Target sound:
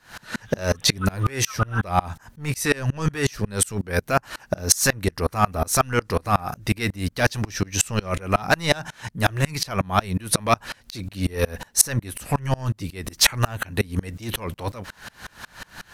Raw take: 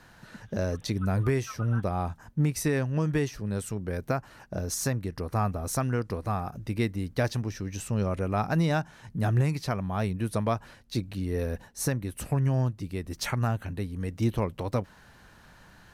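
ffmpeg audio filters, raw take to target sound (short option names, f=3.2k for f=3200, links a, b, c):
-af "apsyclip=27.5dB,tiltshelf=f=780:g=-5,aeval=exprs='val(0)*pow(10,-30*if(lt(mod(-5.5*n/s,1),2*abs(-5.5)/1000),1-mod(-5.5*n/s,1)/(2*abs(-5.5)/1000),(mod(-5.5*n/s,1)-2*abs(-5.5)/1000)/(1-2*abs(-5.5)/1000))/20)':c=same,volume=-7.5dB"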